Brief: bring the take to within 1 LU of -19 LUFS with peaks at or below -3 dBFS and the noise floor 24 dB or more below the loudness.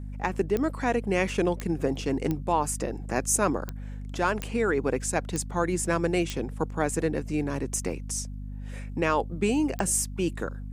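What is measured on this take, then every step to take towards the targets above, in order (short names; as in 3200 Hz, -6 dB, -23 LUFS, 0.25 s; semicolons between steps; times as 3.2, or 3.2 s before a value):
clicks 8; hum 50 Hz; harmonics up to 250 Hz; hum level -34 dBFS; loudness -28.0 LUFS; peak -9.5 dBFS; loudness target -19.0 LUFS
-> de-click; de-hum 50 Hz, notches 5; gain +9 dB; limiter -3 dBFS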